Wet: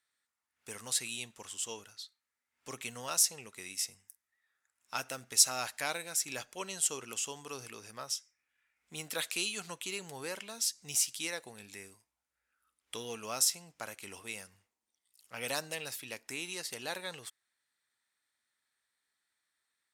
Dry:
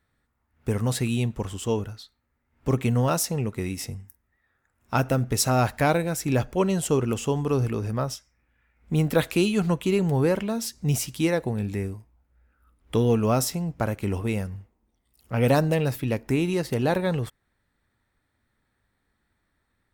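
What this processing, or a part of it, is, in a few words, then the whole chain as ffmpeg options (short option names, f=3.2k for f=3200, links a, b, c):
piezo pickup straight into a mixer: -af "lowpass=8.5k,aderivative,volume=4dB"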